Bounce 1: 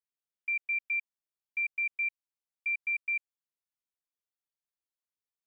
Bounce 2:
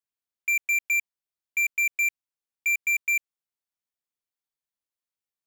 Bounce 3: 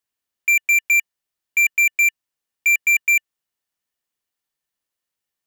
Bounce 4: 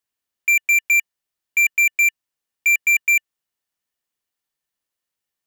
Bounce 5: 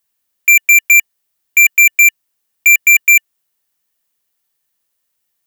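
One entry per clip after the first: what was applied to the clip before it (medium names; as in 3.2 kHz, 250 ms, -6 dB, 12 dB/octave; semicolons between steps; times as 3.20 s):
waveshaping leveller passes 3; trim +5.5 dB
small resonant body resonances 1.8/2.9 kHz, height 8 dB; trim +8 dB
no audible change
treble shelf 9.2 kHz +10 dB; trim +7.5 dB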